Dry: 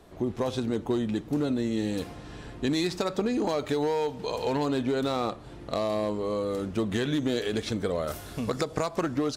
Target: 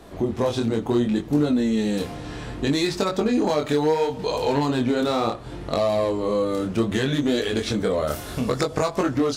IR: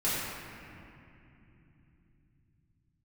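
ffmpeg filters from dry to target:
-filter_complex "[0:a]flanger=delay=20:depth=7.1:speed=0.68,asplit=2[a][b];[b]acompressor=threshold=-40dB:ratio=6,volume=-2dB[c];[a][c]amix=inputs=2:normalize=0,volume=7dB"

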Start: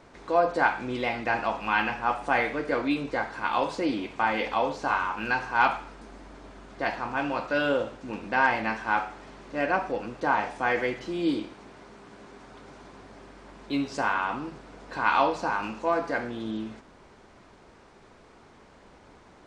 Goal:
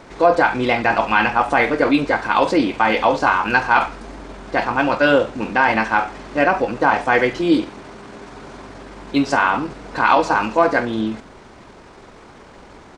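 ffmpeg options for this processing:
-af "atempo=1.5,alimiter=level_in=13dB:limit=-1dB:release=50:level=0:latency=1,volume=-1.5dB"

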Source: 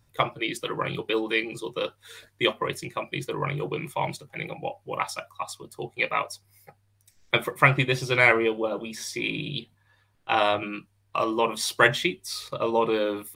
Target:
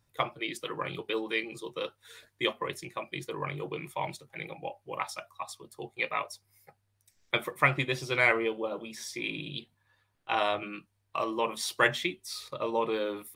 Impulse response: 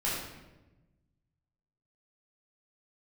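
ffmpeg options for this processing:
-af "lowshelf=f=170:g=-5,volume=-5.5dB"

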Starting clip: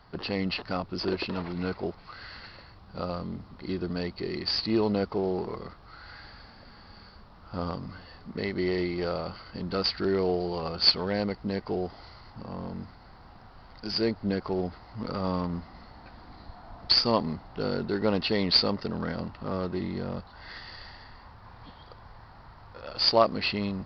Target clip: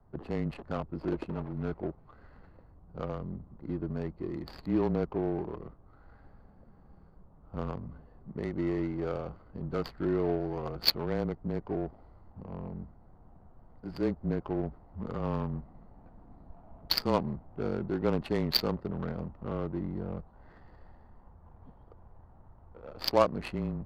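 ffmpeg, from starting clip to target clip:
-af "afreqshift=-25,adynamicsmooth=sensitivity=1.5:basefreq=570,volume=-2.5dB"

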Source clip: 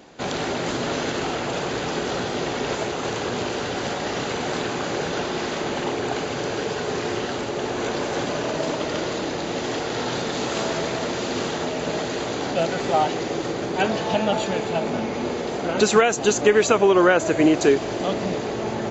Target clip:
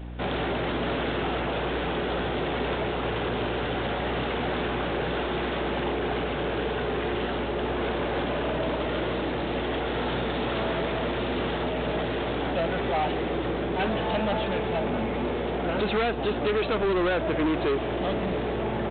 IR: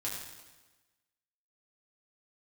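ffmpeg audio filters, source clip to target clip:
-af "aresample=8000,asoftclip=type=tanh:threshold=-22dB,aresample=44100,aeval=exprs='val(0)+0.0158*(sin(2*PI*60*n/s)+sin(2*PI*2*60*n/s)/2+sin(2*PI*3*60*n/s)/3+sin(2*PI*4*60*n/s)/4+sin(2*PI*5*60*n/s)/5)':c=same"

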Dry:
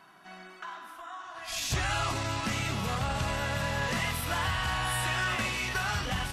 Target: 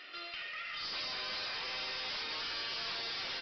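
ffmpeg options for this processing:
-filter_complex "[0:a]afftfilt=real='re*lt(hypot(re,im),0.0708)':imag='im*lt(hypot(re,im),0.0708)':win_size=1024:overlap=0.75,bandreject=f=60:t=h:w=6,bandreject=f=120:t=h:w=6,bandreject=f=180:t=h:w=6,bandreject=f=240:t=h:w=6,bandreject=f=300:t=h:w=6,bandreject=f=360:t=h:w=6,aeval=exprs='0.075*(cos(1*acos(clip(val(0)/0.075,-1,1)))-cos(1*PI/2))+0.015*(cos(4*acos(clip(val(0)/0.075,-1,1)))-cos(4*PI/2))+0.00119*(cos(8*acos(clip(val(0)/0.075,-1,1)))-cos(8*PI/2))':c=same,asplit=2[a][b];[b]acompressor=threshold=-45dB:ratio=16,volume=-1dB[c];[a][c]amix=inputs=2:normalize=0,asetrate=81585,aresample=44100,aemphasis=mode=production:type=bsi,aresample=11025,asoftclip=type=tanh:threshold=-34dB,aresample=44100,volume=-1dB"

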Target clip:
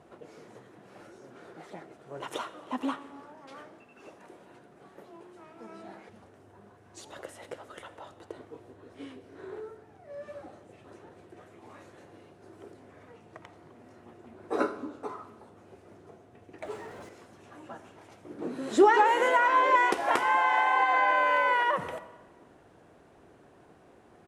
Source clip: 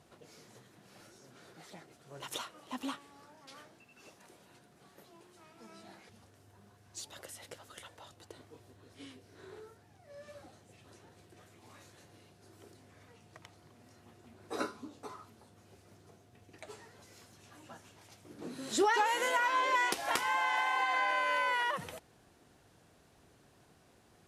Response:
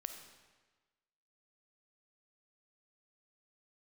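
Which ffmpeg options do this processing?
-filter_complex "[0:a]asettb=1/sr,asplit=3[a][b][c];[a]atrim=end=16.624[d];[b]atrim=start=16.62:end=17.09,asetpts=PTS-STARTPTS,afade=t=in:d=0.004:c=qsin,afade=t=out:st=0.466:d=0.004:c=qsin,aeval=exprs='val(0)+0.5*0.00299*sgn(val(0))':c=same[e];[c]atrim=start=17.086[f];[d][e]acrossfade=d=0.004:c1=hsin:c2=qsin[g];[g][f]acrossfade=d=0.004:c1=qsin:c2=hsin,firequalizer=gain_entry='entry(110,0);entry(340,8);entry(4500,-8);entry(9100,-6);entry(13000,-13)':delay=0.05:min_phase=1,asplit=2[h][i];[1:a]atrim=start_sample=2205[j];[i][j]afir=irnorm=-1:irlink=0,volume=-0.5dB[k];[h][k]amix=inputs=2:normalize=0,volume=-2dB"

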